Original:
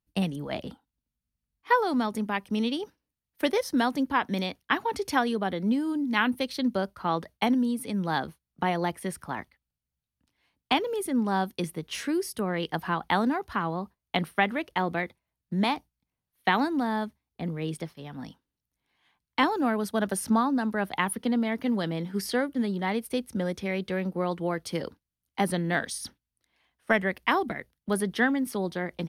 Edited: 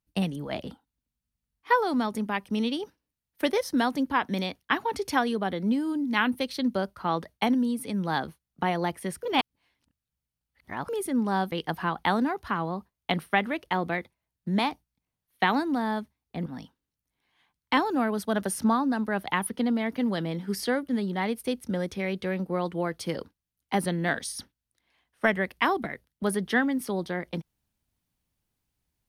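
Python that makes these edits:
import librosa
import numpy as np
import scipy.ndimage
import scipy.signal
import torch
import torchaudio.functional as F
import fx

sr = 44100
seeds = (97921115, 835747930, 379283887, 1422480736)

y = fx.edit(x, sr, fx.reverse_span(start_s=9.23, length_s=1.66),
    fx.cut(start_s=11.52, length_s=1.05),
    fx.cut(start_s=17.51, length_s=0.61), tone=tone)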